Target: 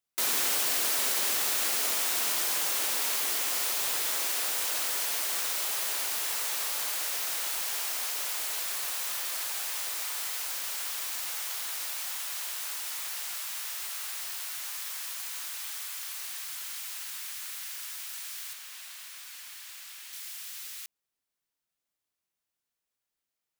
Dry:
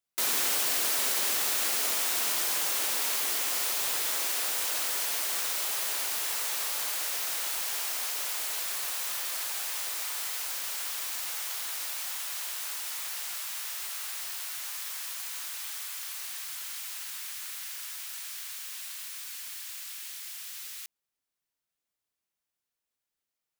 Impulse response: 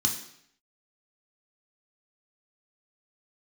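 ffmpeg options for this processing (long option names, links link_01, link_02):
-filter_complex "[0:a]asettb=1/sr,asplit=3[link_01][link_02][link_03];[link_01]atrim=end=18.534[link_04];[link_02]atrim=start=18.53:end=20.13,asetpts=PTS-STARTPTS,afade=type=in:duration=0.004:curve=qsin,afade=type=out:start_time=1.596:duration=0.004:curve=qsin,highshelf=frequency=4500:gain=-6[link_05];[link_03]atrim=start=20.126[link_06];[link_04][link_05]acrossfade=duration=0.004:curve1=hsin:curve2=qsin[link_07];[link_07][link_06]acrossfade=duration=0.004:curve1=qsin:curve2=hsin"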